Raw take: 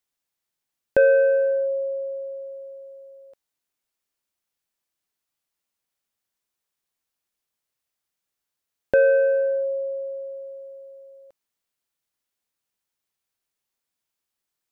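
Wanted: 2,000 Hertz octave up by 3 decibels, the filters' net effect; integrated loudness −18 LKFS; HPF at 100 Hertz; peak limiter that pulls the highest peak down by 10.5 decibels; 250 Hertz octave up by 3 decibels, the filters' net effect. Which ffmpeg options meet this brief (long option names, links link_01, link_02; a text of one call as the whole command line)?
ffmpeg -i in.wav -af "highpass=100,equalizer=frequency=250:width_type=o:gain=4,equalizer=frequency=2000:width_type=o:gain=4.5,volume=6.5dB,alimiter=limit=-10.5dB:level=0:latency=1" out.wav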